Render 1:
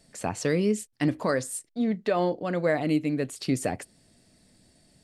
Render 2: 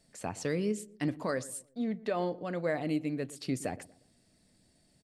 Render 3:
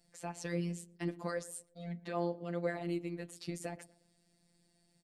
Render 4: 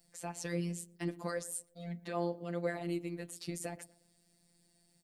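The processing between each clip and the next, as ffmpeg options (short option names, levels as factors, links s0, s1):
-filter_complex "[0:a]asplit=2[s0][s1];[s1]adelay=119,lowpass=f=1000:p=1,volume=0.126,asplit=2[s2][s3];[s3]adelay=119,lowpass=f=1000:p=1,volume=0.42,asplit=2[s4][s5];[s5]adelay=119,lowpass=f=1000:p=1,volume=0.42[s6];[s0][s2][s4][s6]amix=inputs=4:normalize=0,volume=0.447"
-af "afftfilt=real='hypot(re,im)*cos(PI*b)':imag='0':win_size=1024:overlap=0.75,volume=0.841"
-af "highshelf=f=8800:g=11"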